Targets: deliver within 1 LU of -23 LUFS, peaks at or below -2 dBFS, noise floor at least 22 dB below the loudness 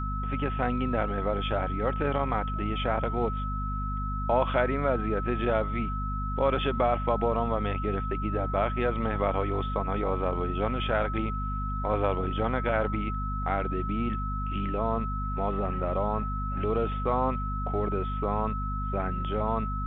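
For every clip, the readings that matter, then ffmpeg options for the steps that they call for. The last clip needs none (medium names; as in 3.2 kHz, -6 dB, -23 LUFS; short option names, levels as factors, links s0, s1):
hum 50 Hz; highest harmonic 250 Hz; hum level -29 dBFS; steady tone 1.3 kHz; tone level -34 dBFS; loudness -29.0 LUFS; peak level -10.0 dBFS; loudness target -23.0 LUFS
-> -af "bandreject=f=50:t=h:w=4,bandreject=f=100:t=h:w=4,bandreject=f=150:t=h:w=4,bandreject=f=200:t=h:w=4,bandreject=f=250:t=h:w=4"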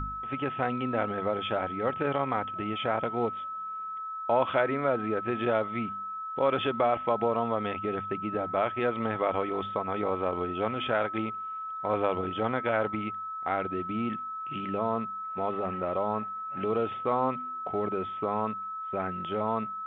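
hum not found; steady tone 1.3 kHz; tone level -34 dBFS
-> -af "bandreject=f=1300:w=30"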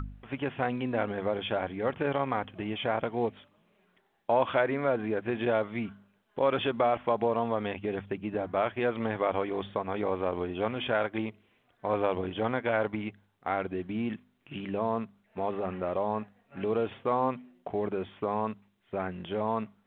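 steady tone not found; loudness -31.5 LUFS; peak level -12.0 dBFS; loudness target -23.0 LUFS
-> -af "volume=2.66"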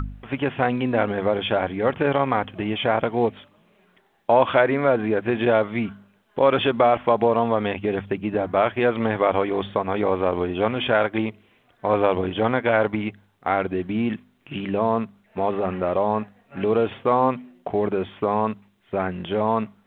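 loudness -23.0 LUFS; peak level -3.5 dBFS; noise floor -62 dBFS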